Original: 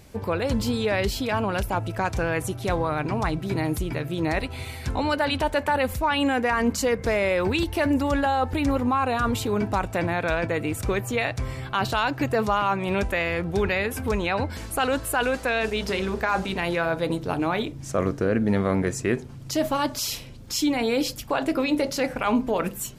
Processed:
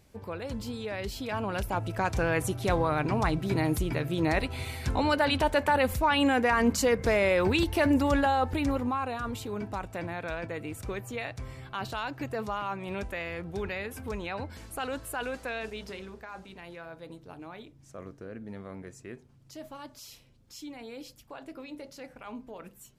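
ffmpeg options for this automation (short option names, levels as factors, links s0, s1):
-af "volume=0.841,afade=t=in:st=0.98:d=1.37:silence=0.316228,afade=t=out:st=8.14:d=1.05:silence=0.354813,afade=t=out:st=15.51:d=0.72:silence=0.354813"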